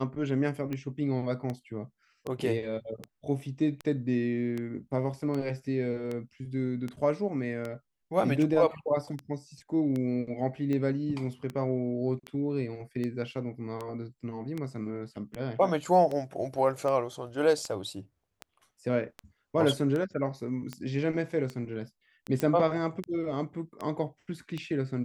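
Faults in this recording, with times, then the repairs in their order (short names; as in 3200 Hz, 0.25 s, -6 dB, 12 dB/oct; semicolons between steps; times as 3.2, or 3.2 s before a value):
tick 78 rpm -22 dBFS
22.4 pop -15 dBFS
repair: de-click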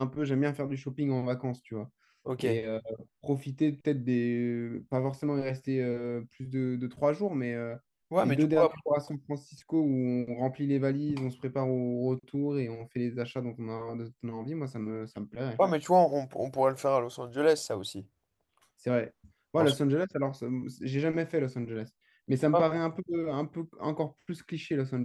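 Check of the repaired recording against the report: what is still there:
none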